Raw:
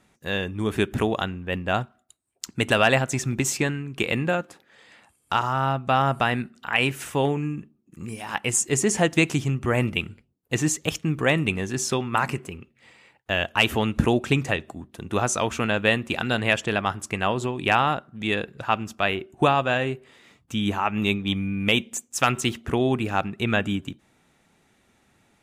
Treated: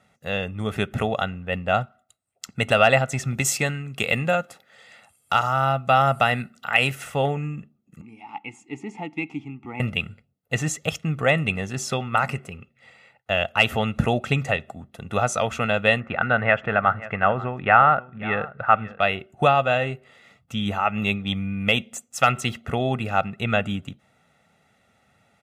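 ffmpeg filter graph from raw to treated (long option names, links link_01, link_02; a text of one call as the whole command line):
ffmpeg -i in.wav -filter_complex "[0:a]asettb=1/sr,asplit=3[link_01][link_02][link_03];[link_01]atrim=end=3.344[link_04];[link_02]atrim=start=3.34:end=6.95,asetpts=PTS-STARTPTS,afade=type=in:duration=0.004:curve=qsin,afade=type=out:start_time=3.606:duration=0.004:curve=qsin,highshelf=frequency=4700:gain=10,asoftclip=type=hard:threshold=-4.5dB,highpass=51[link_05];[link_03]atrim=start=6.946[link_06];[link_04][link_05]acrossfade=duration=0.004:curve1=hsin:curve2=qsin[link_07];[link_07][link_06]acrossfade=duration=0.004:curve1=qsin:curve2=hsin,asettb=1/sr,asplit=3[link_08][link_09][link_10];[link_08]atrim=end=8.014[link_11];[link_09]atrim=start=8.01:end=9.8,asetpts=PTS-STARTPTS,afade=type=in:duration=0.004:curve=qsin,afade=type=out:start_time=1.786:duration=0.004:curve=qsin,acontrast=34,asplit=3[link_12][link_13][link_14];[link_12]bandpass=frequency=300:width_type=q:width=8,volume=0dB[link_15];[link_13]bandpass=frequency=870:width_type=q:width=8,volume=-6dB[link_16];[link_14]bandpass=frequency=2240:width_type=q:width=8,volume=-9dB[link_17];[link_15][link_16][link_17]amix=inputs=3:normalize=0[link_18];[link_10]atrim=start=9.796[link_19];[link_11][link_18]acrossfade=duration=0.004:curve1=hsin:curve2=qsin[link_20];[link_20][link_19]acrossfade=duration=0.004:curve1=qsin:curve2=hsin,asettb=1/sr,asplit=3[link_21][link_22][link_23];[link_21]atrim=end=16.004[link_24];[link_22]atrim=start=16:end=19,asetpts=PTS-STARTPTS,afade=type=in:duration=0.004:curve=qsin,afade=type=out:start_time=2.996:duration=0.004:curve=qsin,lowpass=frequency=1600:width_type=q:width=2.1,aecho=1:1:535:0.126,atrim=end_sample=132300[link_25];[link_23]atrim=start=18.996[link_26];[link_24][link_25]acrossfade=duration=0.004:curve1=hsin:curve2=qsin[link_27];[link_27][link_26]acrossfade=duration=0.004:curve1=qsin:curve2=hsin,highpass=84,bass=frequency=250:gain=-1,treble=frequency=4000:gain=-6,aecho=1:1:1.5:0.67" out.wav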